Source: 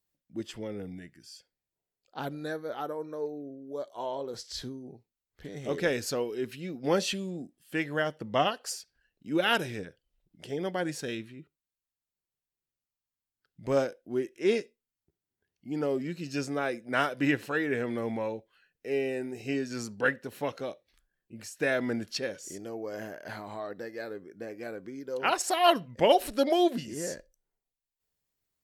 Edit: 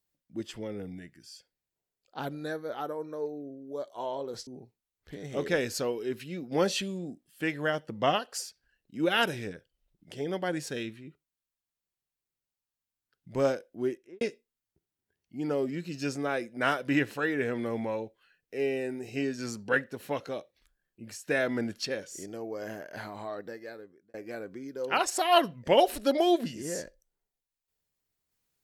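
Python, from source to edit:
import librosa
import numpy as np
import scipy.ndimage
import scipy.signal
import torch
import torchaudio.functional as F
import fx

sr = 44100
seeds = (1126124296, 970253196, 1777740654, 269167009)

y = fx.studio_fade_out(x, sr, start_s=14.19, length_s=0.34)
y = fx.edit(y, sr, fx.cut(start_s=4.47, length_s=0.32),
    fx.fade_out_span(start_s=23.69, length_s=0.77), tone=tone)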